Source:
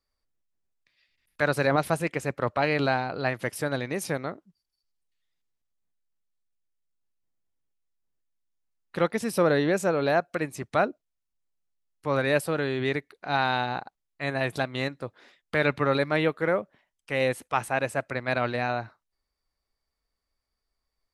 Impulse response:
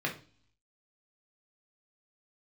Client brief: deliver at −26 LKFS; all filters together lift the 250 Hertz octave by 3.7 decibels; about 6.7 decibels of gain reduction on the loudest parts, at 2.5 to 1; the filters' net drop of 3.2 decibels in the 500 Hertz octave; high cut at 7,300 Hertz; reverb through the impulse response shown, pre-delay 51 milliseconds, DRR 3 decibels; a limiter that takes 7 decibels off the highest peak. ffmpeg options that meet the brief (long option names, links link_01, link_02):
-filter_complex "[0:a]lowpass=7300,equalizer=frequency=250:width_type=o:gain=6.5,equalizer=frequency=500:width_type=o:gain=-5.5,acompressor=threshold=-29dB:ratio=2.5,alimiter=limit=-22.5dB:level=0:latency=1,asplit=2[link_01][link_02];[1:a]atrim=start_sample=2205,adelay=51[link_03];[link_02][link_03]afir=irnorm=-1:irlink=0,volume=-10dB[link_04];[link_01][link_04]amix=inputs=2:normalize=0,volume=7dB"